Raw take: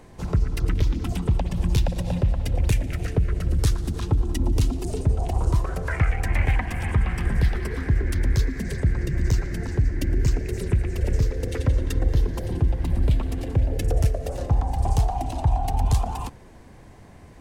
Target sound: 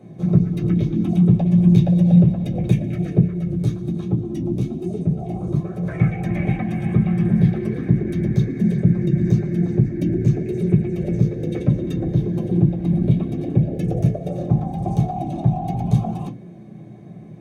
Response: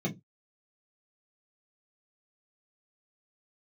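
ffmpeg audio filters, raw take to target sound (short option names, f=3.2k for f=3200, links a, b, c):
-filter_complex "[1:a]atrim=start_sample=2205[a];[0:a][a]afir=irnorm=-1:irlink=0,asettb=1/sr,asplit=3[b][c][d];[b]atrim=end=3.284[e];[c]atrim=start=3.28:end=5.83,asetpts=PTS-STARTPTS,afade=t=in:d=0.004:c=qsin,afade=t=out:st=2.546:d=0.004:c=qsin,flanger=delay=9.2:depth=8.5:regen=-32:speed=1.2:shape=triangular[f];[d]atrim=start=5.826[g];[e][f]acrossfade=d=0.004:c1=hsin:c2=qsin[h];[h][g]acrossfade=d=0.004:c1=qsin:c2=hsin,volume=-7dB"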